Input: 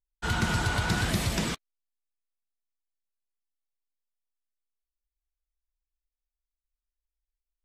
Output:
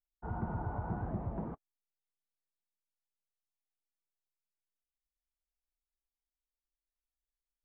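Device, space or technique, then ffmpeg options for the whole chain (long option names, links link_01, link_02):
under water: -af "lowpass=frequency=1000:width=0.5412,lowpass=frequency=1000:width=1.3066,equalizer=frequency=790:width_type=o:width=0.49:gain=4.5,volume=-9dB"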